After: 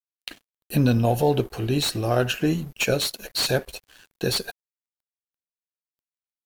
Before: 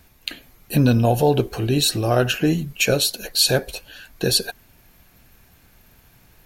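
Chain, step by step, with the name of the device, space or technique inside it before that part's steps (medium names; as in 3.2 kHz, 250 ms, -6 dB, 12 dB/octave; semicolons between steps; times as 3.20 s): early transistor amplifier (crossover distortion -41.5 dBFS; slew-rate limiter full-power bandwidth 610 Hz); trim -3 dB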